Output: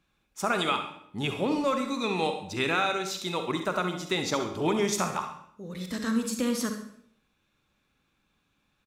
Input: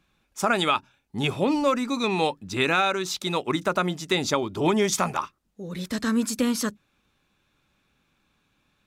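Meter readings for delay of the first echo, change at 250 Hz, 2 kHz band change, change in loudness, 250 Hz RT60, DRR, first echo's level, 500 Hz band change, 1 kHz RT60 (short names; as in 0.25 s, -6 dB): 67 ms, -4.0 dB, -4.0 dB, -4.0 dB, 0.80 s, 5.5 dB, -11.5 dB, -4.0 dB, 0.60 s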